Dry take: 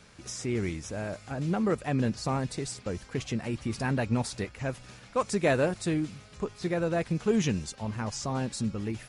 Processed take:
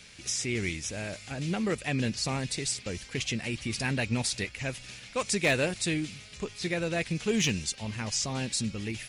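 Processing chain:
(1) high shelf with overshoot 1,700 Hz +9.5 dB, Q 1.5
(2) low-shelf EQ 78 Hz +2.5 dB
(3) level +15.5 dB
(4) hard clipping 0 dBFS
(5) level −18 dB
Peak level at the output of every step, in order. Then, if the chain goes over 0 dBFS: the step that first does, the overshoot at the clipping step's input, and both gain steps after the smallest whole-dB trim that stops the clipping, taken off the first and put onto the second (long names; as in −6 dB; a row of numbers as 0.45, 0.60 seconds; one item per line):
−7.5, −7.5, +8.0, 0.0, −18.0 dBFS
step 3, 8.0 dB
step 3 +7.5 dB, step 5 −10 dB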